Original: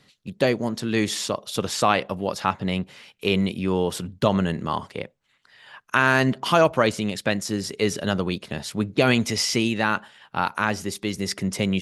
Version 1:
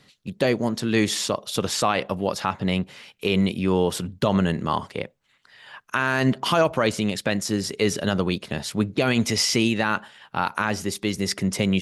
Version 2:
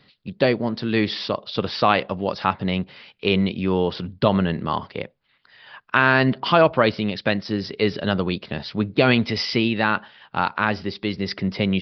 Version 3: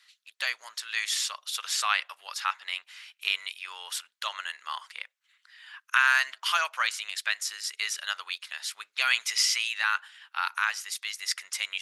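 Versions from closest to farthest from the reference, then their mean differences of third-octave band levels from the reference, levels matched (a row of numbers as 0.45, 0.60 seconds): 1, 2, 3; 1.5, 3.0, 15.0 decibels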